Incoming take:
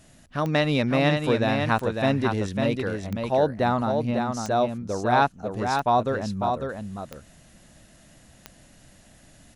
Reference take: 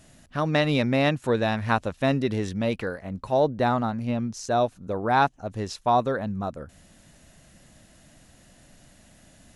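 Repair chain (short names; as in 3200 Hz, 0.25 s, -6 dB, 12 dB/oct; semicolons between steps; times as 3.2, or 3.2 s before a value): de-click; inverse comb 0.55 s -5 dB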